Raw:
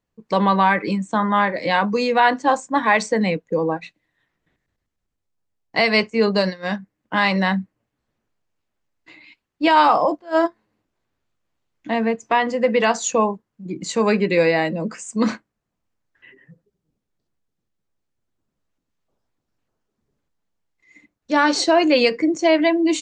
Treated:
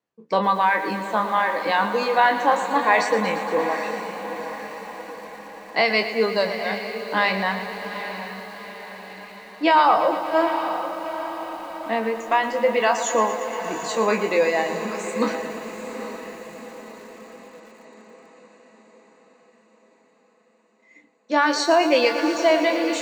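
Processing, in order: spectral sustain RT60 0.39 s; reverb removal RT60 1.8 s; frequency weighting A; vibrato 0.56 Hz 6.4 cents; tilt shelf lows +4.5 dB, about 910 Hz; echo that smears into a reverb 812 ms, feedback 55%, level -10 dB; bit-crushed delay 116 ms, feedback 80%, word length 7-bit, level -11.5 dB; trim -1 dB

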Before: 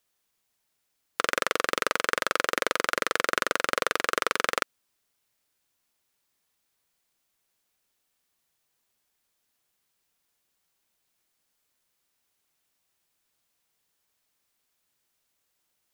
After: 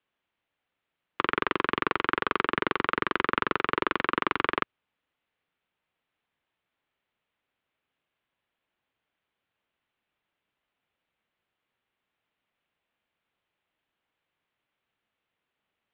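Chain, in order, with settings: mistuned SSB -130 Hz 180–3400 Hz

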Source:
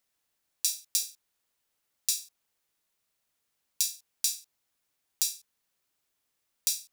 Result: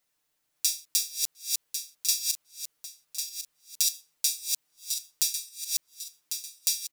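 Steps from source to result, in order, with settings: backward echo that repeats 549 ms, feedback 59%, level -3 dB; comb 6.6 ms, depth 76%

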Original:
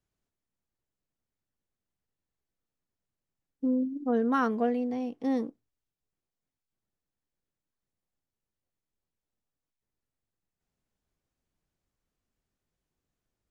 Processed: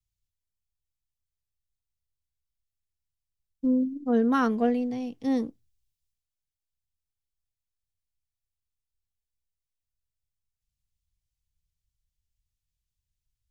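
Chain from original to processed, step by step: bass shelf 210 Hz +8 dB; three bands expanded up and down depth 70%

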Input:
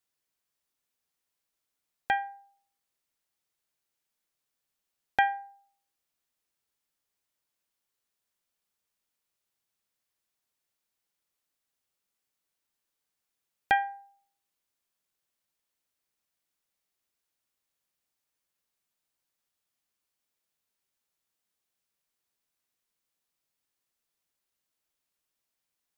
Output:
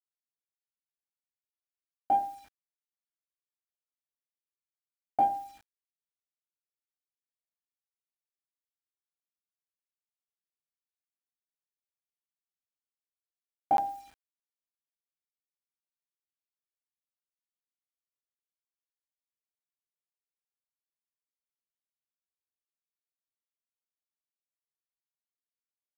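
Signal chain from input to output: local Wiener filter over 9 samples; elliptic low-pass 1.1 kHz, stop band 40 dB; static phaser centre 700 Hz, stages 8; delay 71 ms -14.5 dB; compression 8:1, threshold -30 dBFS, peak gain reduction 7 dB; reverberation RT60 0.40 s, pre-delay 3 ms, DRR -3 dB; Chebyshev shaper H 3 -33 dB, 6 -42 dB, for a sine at -11.5 dBFS; bit crusher 9-bit; crackling interface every 0.51 s, samples 512, zero, from 0.51 s; trim -3.5 dB

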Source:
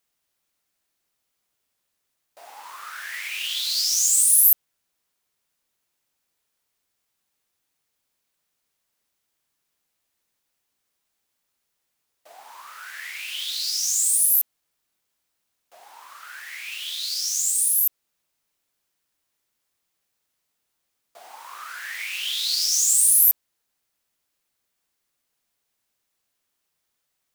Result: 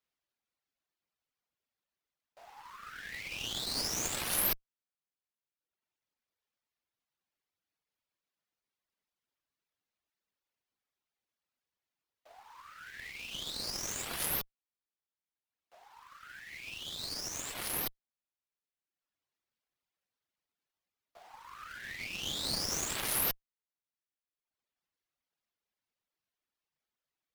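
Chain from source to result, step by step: median filter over 5 samples; reverb removal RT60 1.3 s; Chebyshev shaper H 8 -15 dB, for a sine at -8.5 dBFS; trim -8.5 dB

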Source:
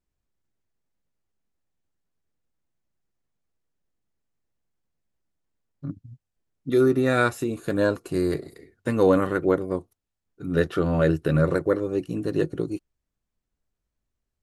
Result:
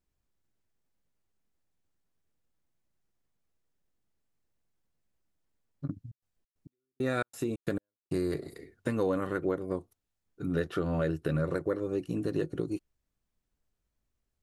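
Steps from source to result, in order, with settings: compression 3:1, threshold -29 dBFS, peak gain reduction 11.5 dB; 5.86–8.19 s: trance gate "...xx.xx.x" 135 bpm -60 dB

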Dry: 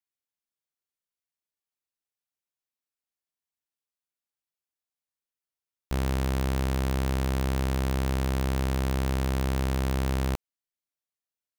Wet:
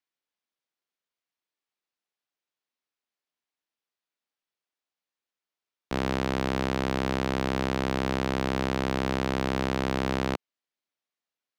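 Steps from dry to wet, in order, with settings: three-band isolator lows -16 dB, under 170 Hz, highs -16 dB, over 5.6 kHz; trim +5 dB

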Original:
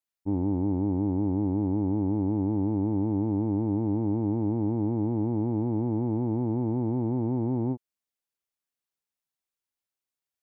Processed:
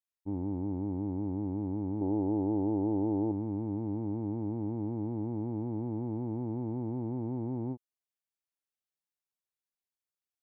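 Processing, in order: 2.01–3.32 s: high-order bell 530 Hz +8.5 dB; trim -7.5 dB

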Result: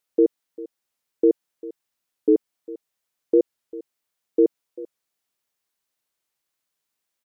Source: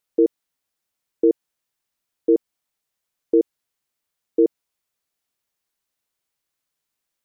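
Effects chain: bass shelf 120 Hz -7 dB; delay 397 ms -18.5 dB; warped record 45 rpm, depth 100 cents

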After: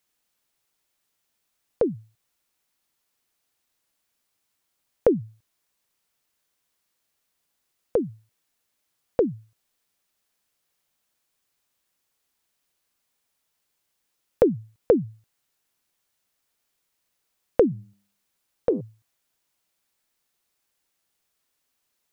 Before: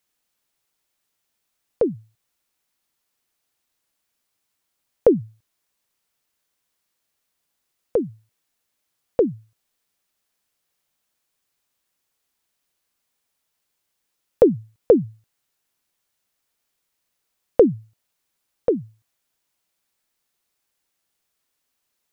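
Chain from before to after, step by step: 17.68–18.81 s: de-hum 100.3 Hz, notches 12; compression 1.5:1, threshold -22 dBFS, peak gain reduction 5.5 dB

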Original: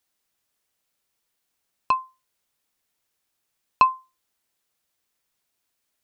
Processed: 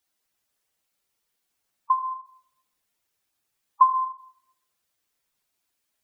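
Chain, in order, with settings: spectral gate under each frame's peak -10 dB strong; dynamic bell 1.3 kHz, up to +5 dB, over -37 dBFS, Q 4.9; reverberation RT60 0.70 s, pre-delay 76 ms, DRR 8 dB

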